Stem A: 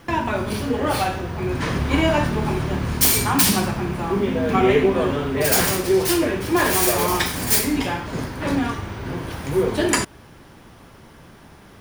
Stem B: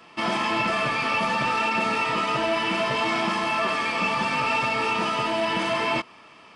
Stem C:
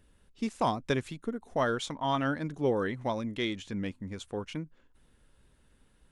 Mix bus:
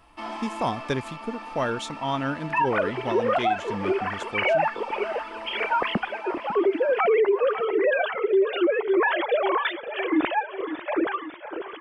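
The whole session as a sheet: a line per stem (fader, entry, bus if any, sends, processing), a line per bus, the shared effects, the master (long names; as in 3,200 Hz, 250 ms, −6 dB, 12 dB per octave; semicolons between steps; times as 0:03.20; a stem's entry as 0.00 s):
+1.5 dB, 2.45 s, no send, echo send −14.5 dB, three sine waves on the formant tracks; reverb reduction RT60 1.1 s
−3.0 dB, 0.00 s, no send, echo send −13.5 dB, Chebyshev high-pass with heavy ripple 210 Hz, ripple 9 dB; automatic ducking −9 dB, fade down 1.20 s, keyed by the third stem
+2.0 dB, 0.00 s, no send, no echo send, no processing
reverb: not used
echo: repeating echo 547 ms, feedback 53%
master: brickwall limiter −14 dBFS, peak gain reduction 14 dB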